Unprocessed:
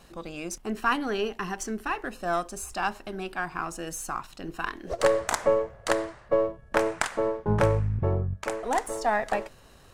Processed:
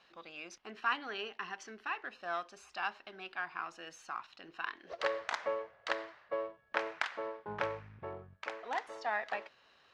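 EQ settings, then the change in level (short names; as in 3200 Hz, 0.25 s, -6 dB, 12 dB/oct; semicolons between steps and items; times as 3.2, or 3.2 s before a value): band-pass 5100 Hz, Q 0.53; air absorption 270 m; +1.5 dB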